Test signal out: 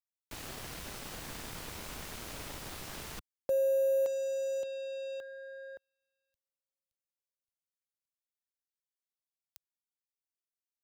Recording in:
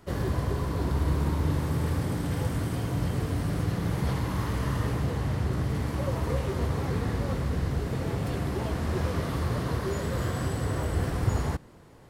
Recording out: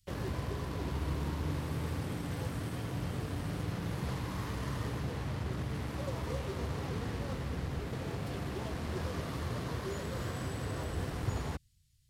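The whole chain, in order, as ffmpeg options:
ffmpeg -i in.wav -filter_complex "[0:a]lowshelf=frequency=61:gain=-5,acrossover=split=110|3200[link_01][link_02][link_03];[link_02]acrusher=bits=5:mix=0:aa=0.5[link_04];[link_01][link_04][link_03]amix=inputs=3:normalize=0,volume=-7.5dB" out.wav

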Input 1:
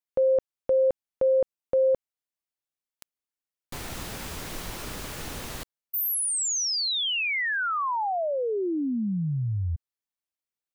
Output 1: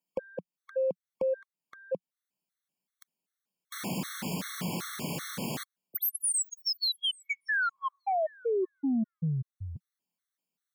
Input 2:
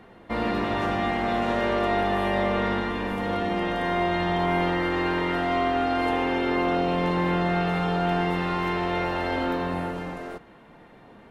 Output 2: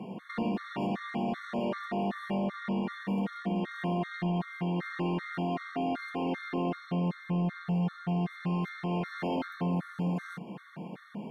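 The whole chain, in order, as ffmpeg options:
ffmpeg -i in.wav -af "highpass=frequency=140:width=0.5412,highpass=frequency=140:width=1.3066,equalizer=frequency=180:width_type=o:width=0.82:gain=12.5,acompressor=threshold=-29dB:ratio=12:attack=4.2:release=407:knee=6:detection=rms,asoftclip=type=tanh:threshold=-26.5dB,afftfilt=real='re*gt(sin(2*PI*2.6*pts/sr)*(1-2*mod(floor(b*sr/1024/1100),2)),0)':imag='im*gt(sin(2*PI*2.6*pts/sr)*(1-2*mod(floor(b*sr/1024/1100),2)),0)':win_size=1024:overlap=0.75,volume=5.5dB" out.wav

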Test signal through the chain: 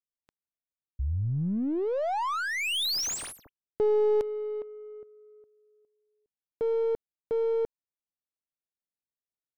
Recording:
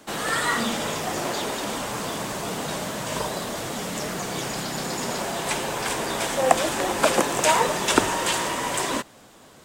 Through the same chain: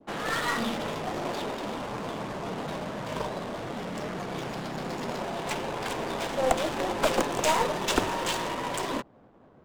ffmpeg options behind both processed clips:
ffmpeg -i in.wav -af "adynamicequalizer=threshold=0.0141:dfrequency=1700:dqfactor=1.2:tfrequency=1700:tqfactor=1.2:attack=5:release=100:ratio=0.375:range=2:mode=cutabove:tftype=bell,adynamicsmooth=sensitivity=6:basefreq=720,aeval=exprs='(tanh(3.98*val(0)+0.5)-tanh(0.5))/3.98':channel_layout=same,volume=-1dB" out.wav

